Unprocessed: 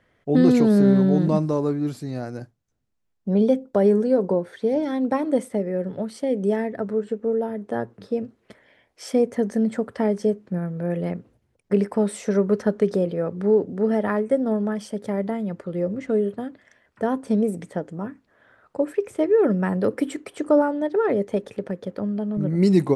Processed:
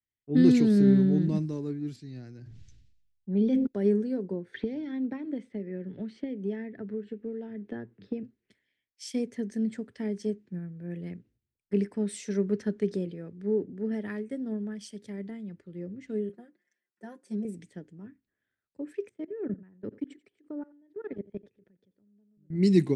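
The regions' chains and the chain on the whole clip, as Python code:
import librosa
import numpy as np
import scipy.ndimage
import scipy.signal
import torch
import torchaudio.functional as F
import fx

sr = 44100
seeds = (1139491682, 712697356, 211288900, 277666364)

y = fx.chain(x, sr, fx.lowpass(hz=5300.0, slope=12),
    fx.sustainer(db_per_s=32.0), at=(1.96, 3.67))
y = fx.chain(y, sr, fx.lowpass(hz=3200.0, slope=12),
    fx.band_squash(depth_pct=100), at=(4.54, 8.23))
y = fx.chain(y, sr, fx.highpass(hz=290.0, slope=12),
    fx.peak_eq(hz=3100.0, db=-10.5, octaves=1.2),
    fx.comb(ms=5.6, depth=0.9), at=(16.29, 17.45))
y = fx.chain(y, sr, fx.lowpass(hz=1700.0, slope=6),
    fx.level_steps(step_db=21),
    fx.echo_single(ms=88, db=-17.5), at=(19.09, 22.5))
y = scipy.signal.sosfilt(scipy.signal.butter(2, 8200.0, 'lowpass', fs=sr, output='sos'), y)
y = fx.band_shelf(y, sr, hz=820.0, db=-12.5, octaves=1.7)
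y = fx.band_widen(y, sr, depth_pct=70)
y = y * 10.0 ** (-8.0 / 20.0)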